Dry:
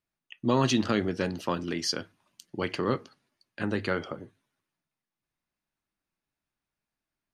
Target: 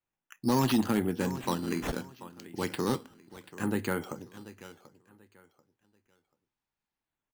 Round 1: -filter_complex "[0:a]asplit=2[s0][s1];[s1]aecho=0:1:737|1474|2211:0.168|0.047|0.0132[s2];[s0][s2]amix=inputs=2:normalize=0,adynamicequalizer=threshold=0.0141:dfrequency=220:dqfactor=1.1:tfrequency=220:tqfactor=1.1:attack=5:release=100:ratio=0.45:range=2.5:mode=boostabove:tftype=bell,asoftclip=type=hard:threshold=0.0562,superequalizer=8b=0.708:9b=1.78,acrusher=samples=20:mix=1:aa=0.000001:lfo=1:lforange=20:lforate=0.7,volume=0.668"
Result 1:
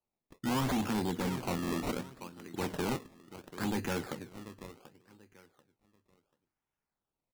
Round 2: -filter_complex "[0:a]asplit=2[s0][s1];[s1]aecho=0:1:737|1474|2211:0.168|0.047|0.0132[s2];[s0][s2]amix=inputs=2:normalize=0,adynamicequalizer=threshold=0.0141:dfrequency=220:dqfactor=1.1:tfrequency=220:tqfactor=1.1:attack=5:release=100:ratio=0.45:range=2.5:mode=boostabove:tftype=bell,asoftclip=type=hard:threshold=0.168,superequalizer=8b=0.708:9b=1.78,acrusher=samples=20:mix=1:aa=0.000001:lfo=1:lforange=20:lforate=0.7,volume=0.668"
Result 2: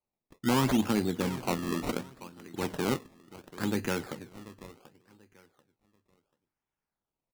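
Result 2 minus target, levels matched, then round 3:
decimation with a swept rate: distortion +7 dB
-filter_complex "[0:a]asplit=2[s0][s1];[s1]aecho=0:1:737|1474|2211:0.168|0.047|0.0132[s2];[s0][s2]amix=inputs=2:normalize=0,adynamicequalizer=threshold=0.0141:dfrequency=220:dqfactor=1.1:tfrequency=220:tqfactor=1.1:attack=5:release=100:ratio=0.45:range=2.5:mode=boostabove:tftype=bell,asoftclip=type=hard:threshold=0.168,superequalizer=8b=0.708:9b=1.78,acrusher=samples=7:mix=1:aa=0.000001:lfo=1:lforange=7:lforate=0.7,volume=0.668"

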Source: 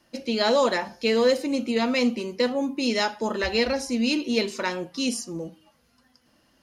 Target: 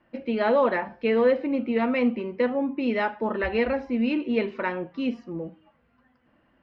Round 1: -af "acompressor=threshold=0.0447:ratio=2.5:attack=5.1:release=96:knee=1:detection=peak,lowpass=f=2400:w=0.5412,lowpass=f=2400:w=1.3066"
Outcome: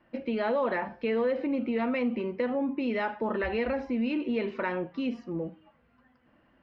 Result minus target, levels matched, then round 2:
compression: peak gain reduction +8.5 dB
-af "lowpass=f=2400:w=0.5412,lowpass=f=2400:w=1.3066"

